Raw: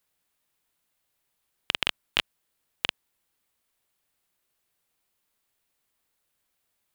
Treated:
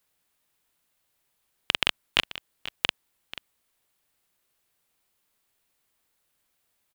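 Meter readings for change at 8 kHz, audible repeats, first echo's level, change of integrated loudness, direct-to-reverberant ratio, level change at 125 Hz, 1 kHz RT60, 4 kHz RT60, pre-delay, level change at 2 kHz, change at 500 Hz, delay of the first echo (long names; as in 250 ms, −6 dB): +2.5 dB, 1, −15.5 dB, +2.5 dB, no reverb audible, +2.5 dB, no reverb audible, no reverb audible, no reverb audible, +2.5 dB, +2.5 dB, 486 ms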